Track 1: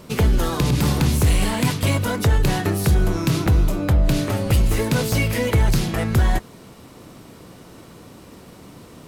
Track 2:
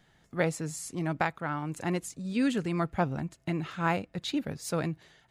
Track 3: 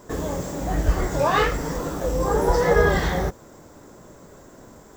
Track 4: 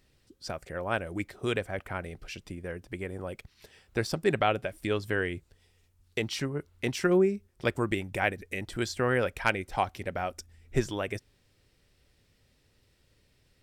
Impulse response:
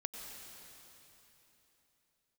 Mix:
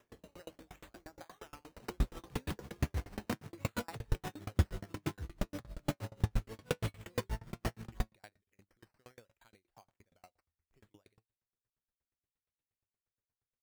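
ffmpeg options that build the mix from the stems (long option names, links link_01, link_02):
-filter_complex "[0:a]acrusher=bits=4:mix=0:aa=0.5,aeval=exprs='val(0)*pow(10,-35*(0.5-0.5*cos(2*PI*6.2*n/s))/20)':channel_layout=same,adelay=1700,volume=1dB[link_01];[1:a]acompressor=threshold=-55dB:ratio=1.5,highpass=frequency=280:width=0.5412,highpass=frequency=280:width=1.3066,volume=2.5dB[link_02];[2:a]acompressor=threshold=-26dB:ratio=6,volume=-14.5dB[link_03];[3:a]volume=-18.5dB[link_04];[link_01][link_02][link_03][link_04]amix=inputs=4:normalize=0,acrusher=samples=10:mix=1:aa=0.000001:lfo=1:lforange=6:lforate=0.7,flanger=delay=8.4:depth=1.8:regen=73:speed=0.52:shape=triangular,aeval=exprs='val(0)*pow(10,-36*if(lt(mod(8.5*n/s,1),2*abs(8.5)/1000),1-mod(8.5*n/s,1)/(2*abs(8.5)/1000),(mod(8.5*n/s,1)-2*abs(8.5)/1000)/(1-2*abs(8.5)/1000))/20)':channel_layout=same"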